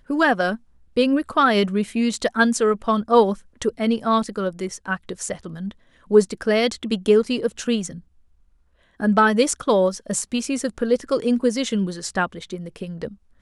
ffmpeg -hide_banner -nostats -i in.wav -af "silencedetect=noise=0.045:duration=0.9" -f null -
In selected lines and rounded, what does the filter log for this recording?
silence_start: 7.91
silence_end: 9.00 | silence_duration: 1.09